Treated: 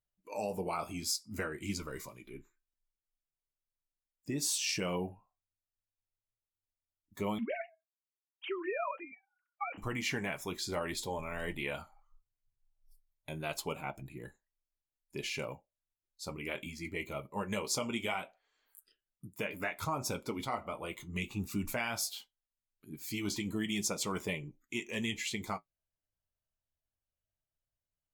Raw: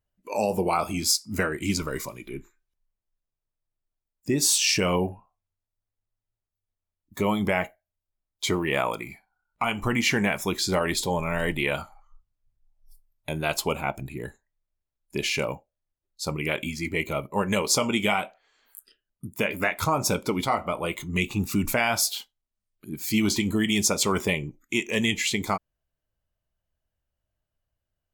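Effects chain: 7.38–9.78 sine-wave speech; flange 0.21 Hz, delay 5.8 ms, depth 4.3 ms, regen -52%; gain -7.5 dB

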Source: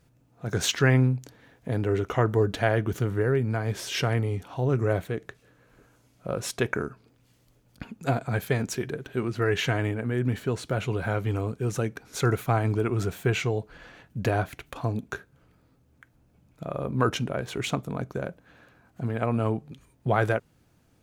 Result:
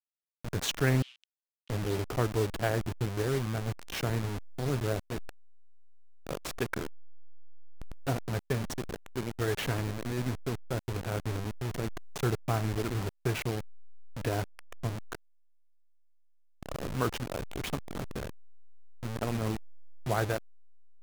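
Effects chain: level-crossing sampler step -24.5 dBFS; vibrato 0.44 Hz 10 cents; 1.02–1.7 ladder band-pass 3200 Hz, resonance 70%; gain -5.5 dB

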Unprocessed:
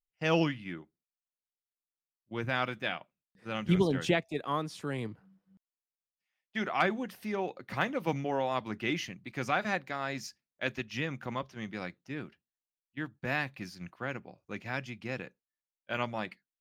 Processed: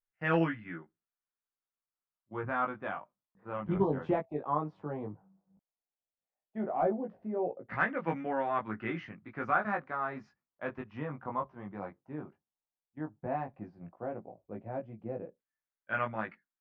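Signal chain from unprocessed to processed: hard clip -17 dBFS, distortion -26 dB; LFO low-pass saw down 0.13 Hz 570–1700 Hz; chorus 0.13 Hz, delay 18 ms, depth 2.1 ms

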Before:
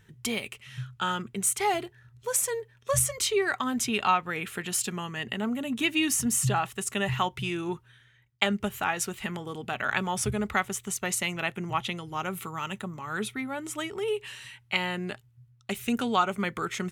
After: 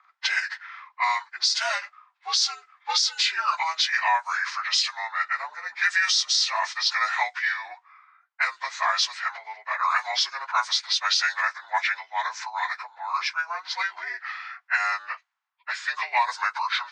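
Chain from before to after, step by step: inharmonic rescaling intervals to 83%; steep high-pass 830 Hz 36 dB/oct; low-pass opened by the level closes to 1300 Hz, open at -26 dBFS; high shelf 2300 Hz +12 dB; compressor 2:1, threshold -28 dBFS, peak gain reduction 9 dB; limiter -20 dBFS, peak gain reduction 8.5 dB; gain +8 dB

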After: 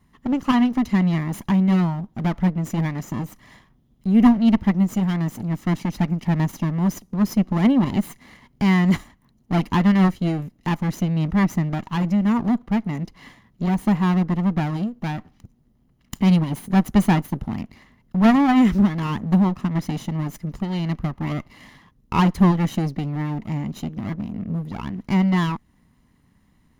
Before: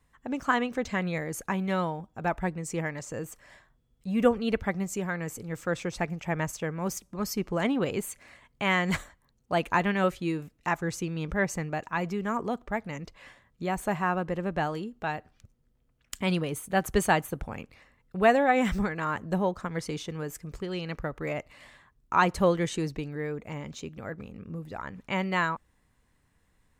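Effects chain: minimum comb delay 1 ms; bell 220 Hz +13 dB 1.6 oct; notch 8000 Hz, Q 5.1; in parallel at -2 dB: compressor, threshold -34 dBFS, peak gain reduction 22 dB

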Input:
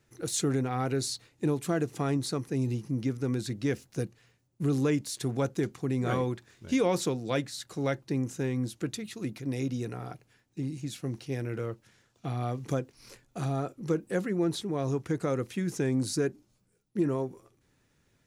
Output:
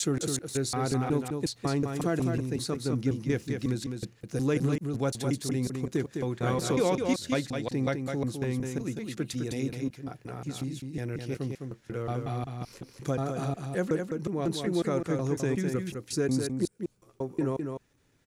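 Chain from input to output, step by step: slices in reverse order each 0.183 s, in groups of 3; echo 0.207 s -5.5 dB

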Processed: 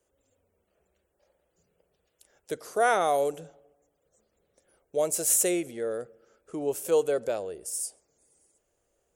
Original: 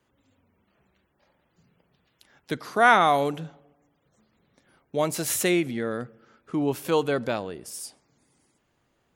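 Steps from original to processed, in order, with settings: graphic EQ 125/250/500/1000/2000/4000/8000 Hz -12/-12/+7/-10/-7/-10/+9 dB

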